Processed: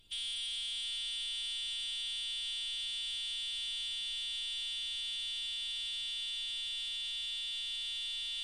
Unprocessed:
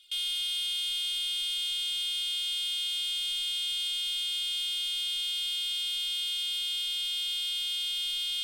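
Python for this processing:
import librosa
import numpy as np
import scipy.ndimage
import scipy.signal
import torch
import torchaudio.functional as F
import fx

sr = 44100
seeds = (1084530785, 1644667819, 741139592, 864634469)

y = fx.dmg_noise_colour(x, sr, seeds[0], colour='brown', level_db=-59.0)
y = y + 10.0 ** (-8.0 / 20.0) * np.pad(y, (int(724 * sr / 1000.0), 0))[:len(y)]
y = fx.pitch_keep_formants(y, sr, semitones=-7.5)
y = y * librosa.db_to_amplitude(-7.0)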